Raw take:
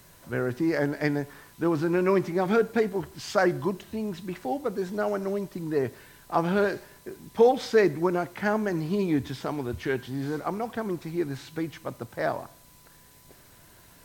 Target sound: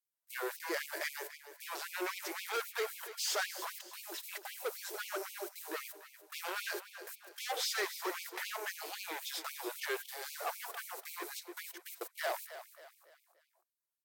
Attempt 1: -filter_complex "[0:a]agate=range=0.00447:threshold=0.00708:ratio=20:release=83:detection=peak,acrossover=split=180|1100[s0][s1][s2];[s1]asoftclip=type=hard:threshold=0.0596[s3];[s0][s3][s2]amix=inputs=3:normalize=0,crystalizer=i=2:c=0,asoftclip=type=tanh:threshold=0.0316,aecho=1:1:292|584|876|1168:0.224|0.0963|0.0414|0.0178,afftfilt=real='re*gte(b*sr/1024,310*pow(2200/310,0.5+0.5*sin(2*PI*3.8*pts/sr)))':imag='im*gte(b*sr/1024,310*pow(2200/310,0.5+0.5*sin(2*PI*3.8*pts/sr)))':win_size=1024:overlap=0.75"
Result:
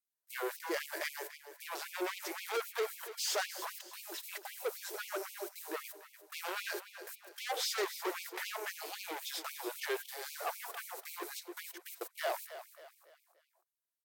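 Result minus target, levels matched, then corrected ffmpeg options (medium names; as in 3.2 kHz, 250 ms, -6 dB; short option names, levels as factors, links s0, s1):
hard clipper: distortion -4 dB
-filter_complex "[0:a]agate=range=0.00447:threshold=0.00708:ratio=20:release=83:detection=peak,acrossover=split=180|1100[s0][s1][s2];[s1]asoftclip=type=hard:threshold=0.0266[s3];[s0][s3][s2]amix=inputs=3:normalize=0,crystalizer=i=2:c=0,asoftclip=type=tanh:threshold=0.0316,aecho=1:1:292|584|876|1168:0.224|0.0963|0.0414|0.0178,afftfilt=real='re*gte(b*sr/1024,310*pow(2200/310,0.5+0.5*sin(2*PI*3.8*pts/sr)))':imag='im*gte(b*sr/1024,310*pow(2200/310,0.5+0.5*sin(2*PI*3.8*pts/sr)))':win_size=1024:overlap=0.75"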